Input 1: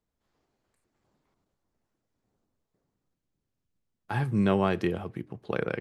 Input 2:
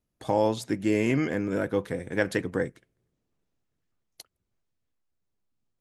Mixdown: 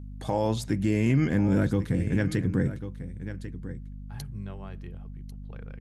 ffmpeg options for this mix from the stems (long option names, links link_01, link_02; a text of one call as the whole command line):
ffmpeg -i stem1.wav -i stem2.wav -filter_complex "[0:a]asubboost=boost=8.5:cutoff=96,volume=-18.5dB[link_01];[1:a]asubboost=boost=12:cutoff=200,aeval=exprs='val(0)+0.01*(sin(2*PI*50*n/s)+sin(2*PI*2*50*n/s)/2+sin(2*PI*3*50*n/s)/3+sin(2*PI*4*50*n/s)/4+sin(2*PI*5*50*n/s)/5)':channel_layout=same,alimiter=limit=-13dB:level=0:latency=1:release=462,volume=1.5dB,asplit=2[link_02][link_03];[link_03]volume=-14.5dB,aecho=0:1:1094:1[link_04];[link_01][link_02][link_04]amix=inputs=3:normalize=0,alimiter=limit=-15dB:level=0:latency=1:release=30" out.wav